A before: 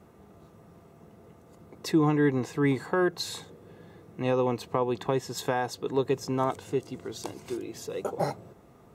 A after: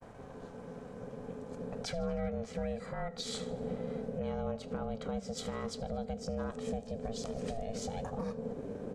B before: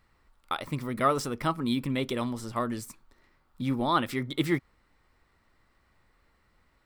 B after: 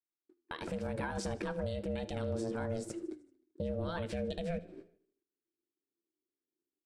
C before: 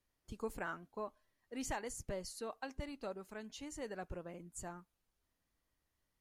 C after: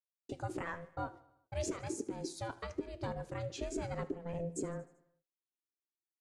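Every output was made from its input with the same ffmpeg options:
-filter_complex "[0:a]agate=range=-48dB:threshold=-56dB:ratio=16:detection=peak,lowpass=f=9.1k:w=0.5412,lowpass=f=9.1k:w=1.3066,asubboost=boost=8:cutoff=190,acompressor=threshold=-33dB:ratio=3,alimiter=level_in=9dB:limit=-24dB:level=0:latency=1:release=212,volume=-9dB,aeval=exprs='val(0)*sin(2*PI*340*n/s)':c=same,flanger=delay=9.1:depth=2.8:regen=86:speed=1:shape=sinusoidal,asplit=2[a][b];[b]aecho=0:1:77|154|231|308|385:0.0891|0.0535|0.0321|0.0193|0.0116[c];[a][c]amix=inputs=2:normalize=0,volume=11.5dB"

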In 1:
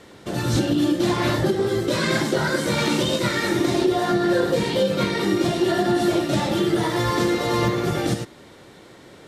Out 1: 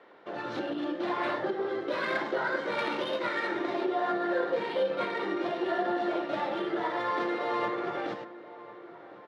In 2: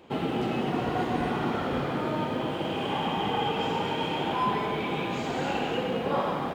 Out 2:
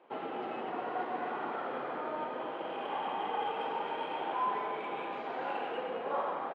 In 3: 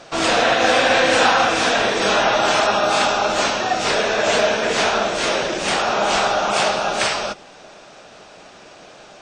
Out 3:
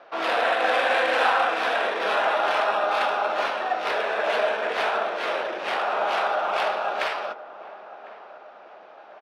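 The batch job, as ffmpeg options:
-filter_complex "[0:a]highpass=510,lowpass=4.1k,asplit=2[a][b];[b]adelay=1053,lowpass=f=1.6k:p=1,volume=-16dB,asplit=2[c][d];[d]adelay=1053,lowpass=f=1.6k:p=1,volume=0.51,asplit=2[e][f];[f]adelay=1053,lowpass=f=1.6k:p=1,volume=0.51,asplit=2[g][h];[h]adelay=1053,lowpass=f=1.6k:p=1,volume=0.51,asplit=2[i][j];[j]adelay=1053,lowpass=f=1.6k:p=1,volume=0.51[k];[a][c][e][g][i][k]amix=inputs=6:normalize=0,acrossover=split=1800[l][m];[m]adynamicsmooth=sensitivity=1:basefreq=2.5k[n];[l][n]amix=inputs=2:normalize=0,volume=-4dB"

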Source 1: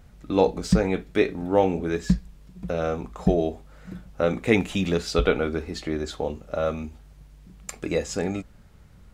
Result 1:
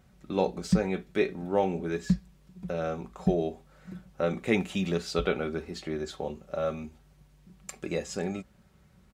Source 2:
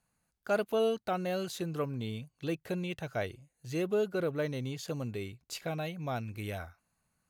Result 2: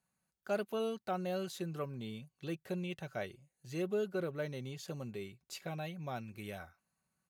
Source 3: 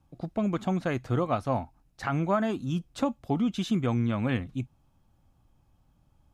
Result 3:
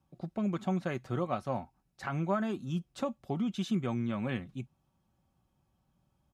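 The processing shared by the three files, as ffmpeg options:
-af "highpass=68,aecho=1:1:5.3:0.39,volume=-6dB"

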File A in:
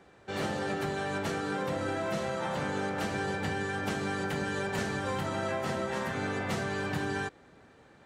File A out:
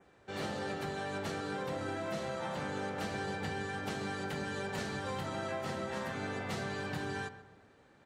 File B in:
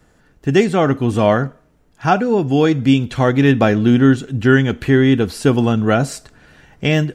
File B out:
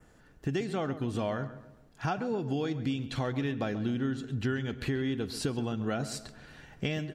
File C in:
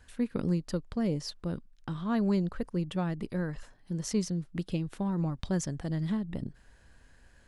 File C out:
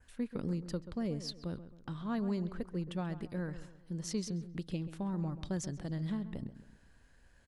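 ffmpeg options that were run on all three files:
-filter_complex "[0:a]adynamicequalizer=threshold=0.00447:dfrequency=4200:dqfactor=2:tfrequency=4200:tqfactor=2:attack=5:release=100:ratio=0.375:range=3:mode=boostabove:tftype=bell,acompressor=threshold=-24dB:ratio=6,asplit=2[a][b];[b]adelay=134,lowpass=f=2.1k:p=1,volume=-12.5dB,asplit=2[c][d];[d]adelay=134,lowpass=f=2.1k:p=1,volume=0.43,asplit=2[e][f];[f]adelay=134,lowpass=f=2.1k:p=1,volume=0.43,asplit=2[g][h];[h]adelay=134,lowpass=f=2.1k:p=1,volume=0.43[i];[a][c][e][g][i]amix=inputs=5:normalize=0,volume=-5.5dB"

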